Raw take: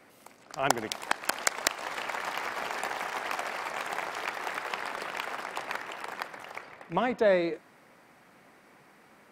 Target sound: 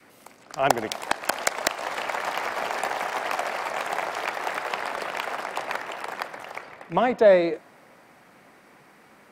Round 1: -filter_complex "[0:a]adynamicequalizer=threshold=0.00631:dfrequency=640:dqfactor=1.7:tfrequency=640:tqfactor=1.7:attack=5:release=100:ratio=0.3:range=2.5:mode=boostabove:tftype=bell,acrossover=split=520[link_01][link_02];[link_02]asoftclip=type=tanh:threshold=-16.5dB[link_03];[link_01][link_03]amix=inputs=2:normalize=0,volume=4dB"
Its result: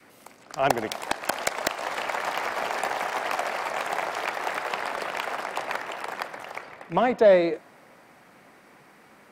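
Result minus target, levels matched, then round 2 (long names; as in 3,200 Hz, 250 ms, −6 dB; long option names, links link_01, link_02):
soft clipping: distortion +6 dB
-filter_complex "[0:a]adynamicequalizer=threshold=0.00631:dfrequency=640:dqfactor=1.7:tfrequency=640:tqfactor=1.7:attack=5:release=100:ratio=0.3:range=2.5:mode=boostabove:tftype=bell,acrossover=split=520[link_01][link_02];[link_02]asoftclip=type=tanh:threshold=-9.5dB[link_03];[link_01][link_03]amix=inputs=2:normalize=0,volume=4dB"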